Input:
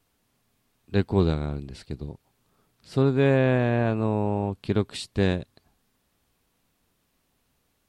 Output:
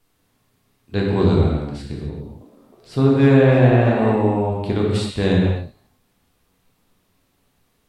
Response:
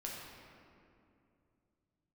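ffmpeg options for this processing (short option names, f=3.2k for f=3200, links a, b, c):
-filter_complex "[0:a]asettb=1/sr,asplit=3[a][b][c];[a]atrim=end=2.094[d];[b]atrim=start=2.09:end=4.13,asetpts=PTS-STARTPTS,afade=t=in:d=0.004:c=qsin,afade=t=out:st=2.036:d=0.004:c=qsin,asplit=6[e][f][g][h][i][j];[f]adelay=313,afreqshift=130,volume=-10dB[k];[g]adelay=626,afreqshift=260,volume=-16dB[l];[h]adelay=939,afreqshift=390,volume=-22dB[m];[i]adelay=1252,afreqshift=520,volume=-28.1dB[n];[j]adelay=1565,afreqshift=650,volume=-34.1dB[o];[e][k][l][m][n][o]amix=inputs=6:normalize=0,atrim=end_sample=89964[p];[c]atrim=start=4.126[q];[d][p]acrossfade=d=0.004:c1=hsin:c2=qsin[r];[r][q]acrossfade=d=0.004:c1=qsin:c2=hsin[s];[1:a]atrim=start_sample=2205,afade=t=out:st=0.27:d=0.01,atrim=end_sample=12348,asetrate=33957,aresample=44100[t];[s][t]afir=irnorm=-1:irlink=0,volume=5.5dB"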